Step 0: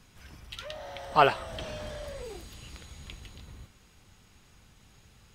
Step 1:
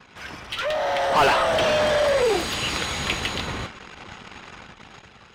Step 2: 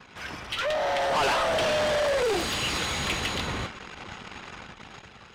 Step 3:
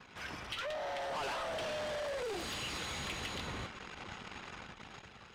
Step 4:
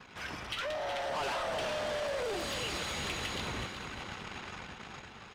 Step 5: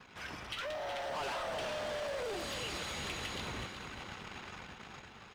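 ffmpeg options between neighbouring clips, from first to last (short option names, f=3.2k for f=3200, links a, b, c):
-filter_complex "[0:a]asplit=2[a][b];[b]highpass=f=720:p=1,volume=36dB,asoftclip=type=tanh:threshold=-6.5dB[c];[a][c]amix=inputs=2:normalize=0,lowpass=f=2.2k:p=1,volume=-6dB,anlmdn=3.98,dynaudnorm=f=210:g=9:m=10.5dB,volume=-8dB"
-af "asoftclip=type=tanh:threshold=-22dB"
-af "acompressor=threshold=-32dB:ratio=6,volume=-6dB"
-af "aecho=1:1:371|742|1113|1484|1855:0.376|0.162|0.0695|0.0299|0.0128,volume=3dB"
-af "acrusher=bits=9:mode=log:mix=0:aa=0.000001,volume=-3.5dB"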